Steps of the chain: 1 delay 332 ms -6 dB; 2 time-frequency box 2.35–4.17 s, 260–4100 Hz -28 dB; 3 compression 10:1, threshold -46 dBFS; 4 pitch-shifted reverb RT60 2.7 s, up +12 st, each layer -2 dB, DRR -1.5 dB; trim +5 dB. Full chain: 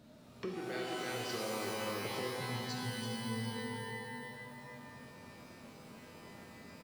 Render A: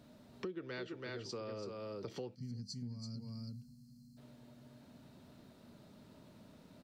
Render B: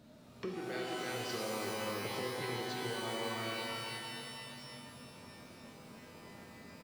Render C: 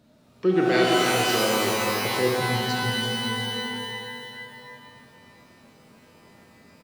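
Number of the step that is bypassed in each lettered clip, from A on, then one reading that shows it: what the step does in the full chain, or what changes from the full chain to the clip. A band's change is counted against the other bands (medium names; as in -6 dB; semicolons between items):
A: 4, 125 Hz band +7.5 dB; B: 2, 125 Hz band -4.5 dB; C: 3, momentary loudness spread change +1 LU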